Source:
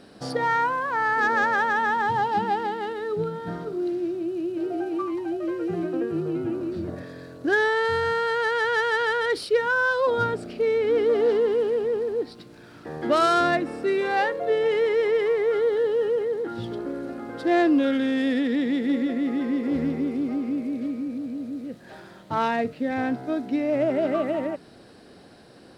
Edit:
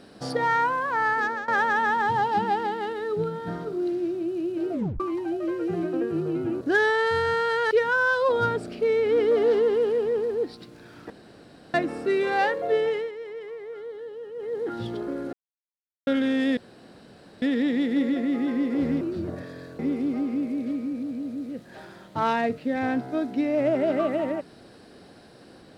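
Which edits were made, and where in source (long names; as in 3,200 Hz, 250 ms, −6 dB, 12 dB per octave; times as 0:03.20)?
0:01.08–0:01.48: fade out, to −18 dB
0:04.72: tape stop 0.28 s
0:06.61–0:07.39: move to 0:19.94
0:08.49–0:09.49: remove
0:12.88–0:13.52: fill with room tone
0:14.56–0:16.46: duck −15 dB, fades 0.34 s
0:17.11–0:17.85: silence
0:18.35: splice in room tone 0.85 s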